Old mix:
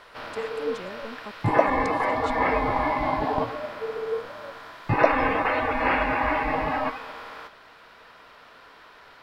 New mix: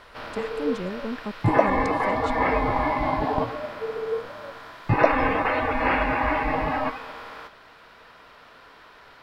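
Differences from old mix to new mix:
speech: add low shelf 420 Hz +11.5 dB; master: add low shelf 240 Hz +4 dB

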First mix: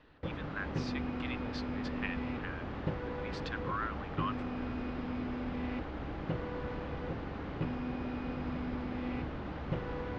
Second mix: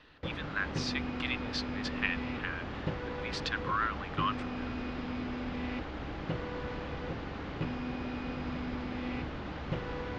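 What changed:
speech +3.5 dB; master: add high shelf 2300 Hz +9 dB

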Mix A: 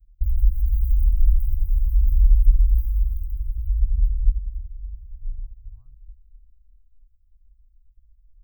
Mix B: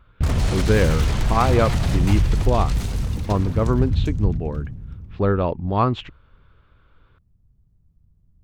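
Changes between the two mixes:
background -8.0 dB; master: remove inverse Chebyshev band-stop 160–7100 Hz, stop band 60 dB

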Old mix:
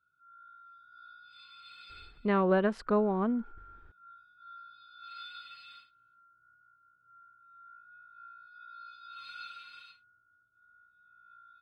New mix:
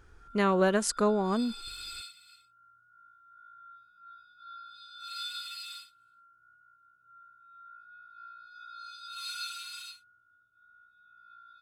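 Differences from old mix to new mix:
speech: entry -1.90 s; master: remove air absorption 400 m

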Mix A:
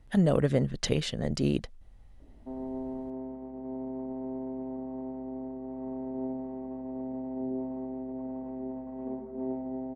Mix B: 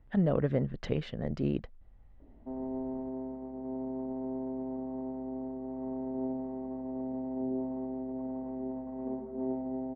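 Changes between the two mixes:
speech -3.5 dB; master: add LPF 2100 Hz 12 dB/oct

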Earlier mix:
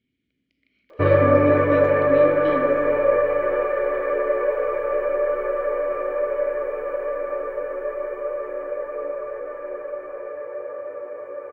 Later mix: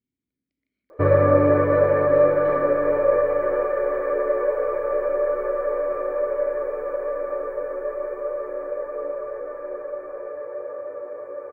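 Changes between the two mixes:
speech -11.0 dB; master: add bell 2800 Hz -12.5 dB 0.87 oct

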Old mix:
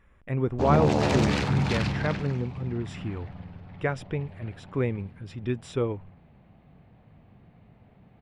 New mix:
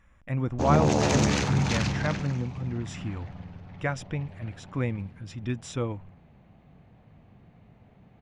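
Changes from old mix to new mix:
speech: add bell 410 Hz -12.5 dB 0.31 oct; master: add bell 6400 Hz +11 dB 0.47 oct

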